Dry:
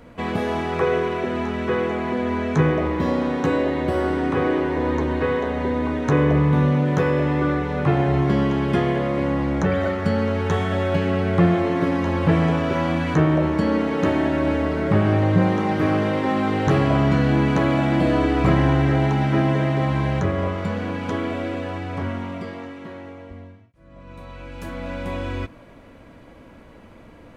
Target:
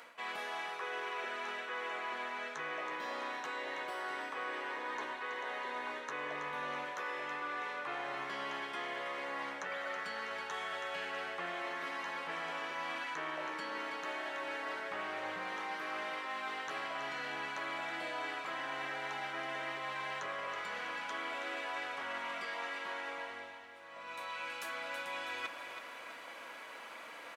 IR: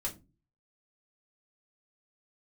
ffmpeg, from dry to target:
-af "highpass=1100,areverse,acompressor=threshold=-44dB:ratio=16,areverse,aecho=1:1:325|650|975|1300|1625|1950:0.355|0.174|0.0852|0.0417|0.0205|0.01,volume=6.5dB"

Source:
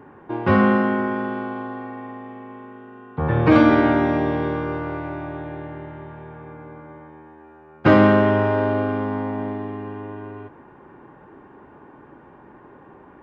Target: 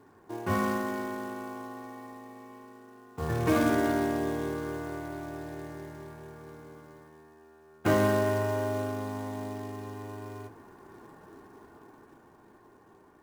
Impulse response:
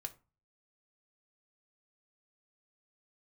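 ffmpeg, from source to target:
-filter_complex "[0:a]dynaudnorm=framelen=260:gausssize=13:maxgain=7.5dB,acrusher=bits=4:mode=log:mix=0:aa=0.000001[link_01];[1:a]atrim=start_sample=2205,asetrate=42777,aresample=44100[link_02];[link_01][link_02]afir=irnorm=-1:irlink=0,volume=-9dB"

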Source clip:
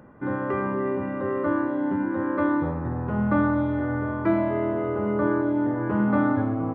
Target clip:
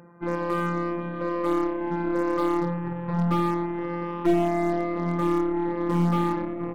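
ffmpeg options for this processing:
ffmpeg -i in.wav -af "afftfilt=real='re*between(b*sr/4096,110,2700)':imag='im*between(b*sr/4096,110,2700)':win_size=4096:overlap=0.75,afftfilt=real='hypot(re,im)*cos(PI*b)':imag='0':win_size=1024:overlap=0.75,aeval=exprs='0.119*(cos(1*acos(clip(val(0)/0.119,-1,1)))-cos(1*PI/2))+0.00668*(cos(4*acos(clip(val(0)/0.119,-1,1)))-cos(4*PI/2))+0.00473*(cos(8*acos(clip(val(0)/0.119,-1,1)))-cos(8*PI/2))':channel_layout=same,volume=3.5dB" out.wav

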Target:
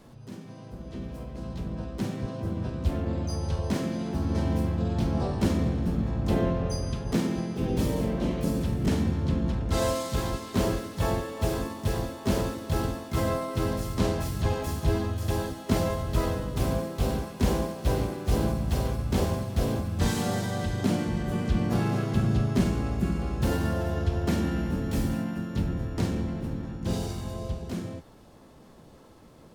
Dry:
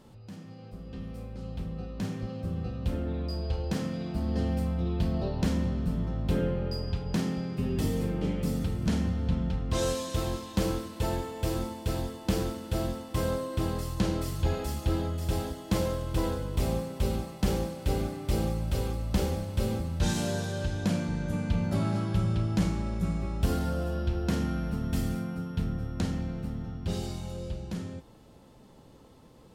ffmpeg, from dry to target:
ffmpeg -i in.wav -filter_complex "[0:a]acrossover=split=330|1600|3400[link_01][link_02][link_03][link_04];[link_04]asoftclip=type=tanh:threshold=-36.5dB[link_05];[link_01][link_02][link_03][link_05]amix=inputs=4:normalize=0,asplit=3[link_06][link_07][link_08];[link_07]asetrate=55563,aresample=44100,atempo=0.793701,volume=-2dB[link_09];[link_08]asetrate=88200,aresample=44100,atempo=0.5,volume=-9dB[link_10];[link_06][link_09][link_10]amix=inputs=3:normalize=0" out.wav

